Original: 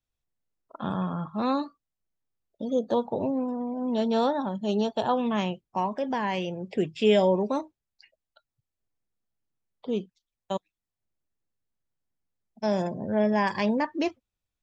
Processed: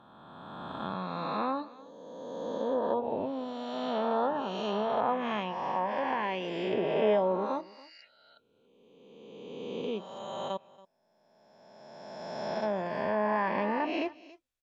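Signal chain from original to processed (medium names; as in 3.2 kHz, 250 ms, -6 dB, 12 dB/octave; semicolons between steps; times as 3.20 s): reverse spectral sustain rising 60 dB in 2.21 s; bass shelf 320 Hz -9.5 dB; echo from a far wall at 48 m, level -21 dB; low-pass that closes with the level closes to 1.6 kHz, closed at -21 dBFS; trim -4 dB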